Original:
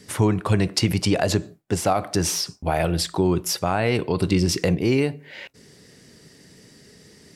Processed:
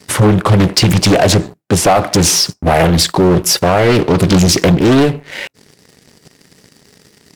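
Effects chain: high-pass 65 Hz 12 dB/octave; waveshaping leveller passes 3; loudspeaker Doppler distortion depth 0.75 ms; trim +3.5 dB

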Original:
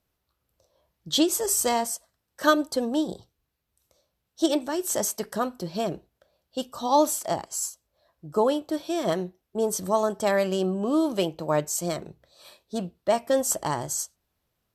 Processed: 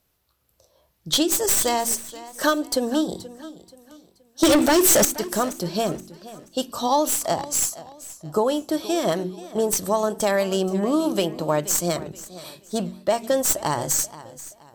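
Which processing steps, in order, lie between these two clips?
tracing distortion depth 0.051 ms; treble shelf 5 kHz +6 dB; de-hum 46.23 Hz, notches 8; 4.43–5.05 s: waveshaping leveller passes 5; compression 2.5:1, threshold -25 dBFS, peak gain reduction 8.5 dB; modulated delay 478 ms, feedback 34%, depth 86 cents, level -17 dB; trim +6 dB

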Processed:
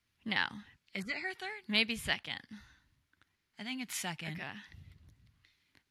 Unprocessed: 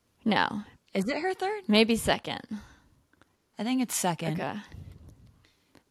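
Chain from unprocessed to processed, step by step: graphic EQ 250/500/1000/2000/4000/8000 Hz -4/-10/-4/+8/+4/-3 dB; trim -8.5 dB

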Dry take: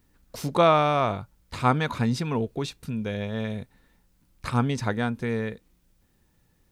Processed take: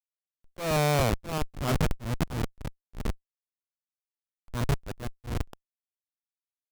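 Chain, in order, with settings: feedback delay 649 ms, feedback 33%, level -8 dB; Schmitt trigger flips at -21.5 dBFS; slow attack 219 ms; trim +5.5 dB

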